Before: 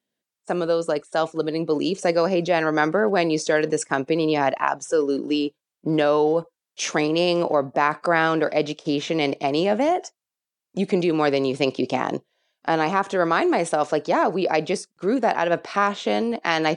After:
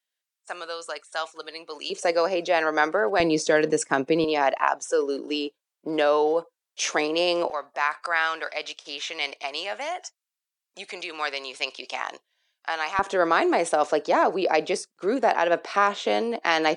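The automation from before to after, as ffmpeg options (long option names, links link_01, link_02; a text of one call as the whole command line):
ffmpeg -i in.wav -af "asetnsamples=nb_out_samples=441:pad=0,asendcmd='1.9 highpass f 480;3.2 highpass f 170;4.24 highpass f 440;7.5 highpass f 1200;12.99 highpass f 330',highpass=1200" out.wav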